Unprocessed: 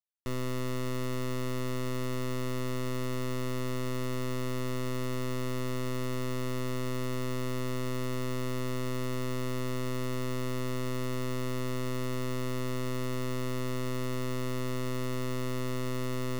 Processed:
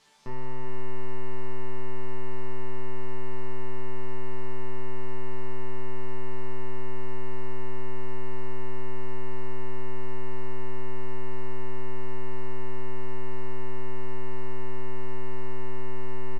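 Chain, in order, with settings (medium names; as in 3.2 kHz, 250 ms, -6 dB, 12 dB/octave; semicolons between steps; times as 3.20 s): one-bit delta coder 64 kbps, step -50 dBFS; low-pass 5.4 kHz 12 dB/octave; peaking EQ 900 Hz +7.5 dB 0.37 oct; chord resonator D3 sus4, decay 0.35 s; delay 383 ms -10 dB; trim +15.5 dB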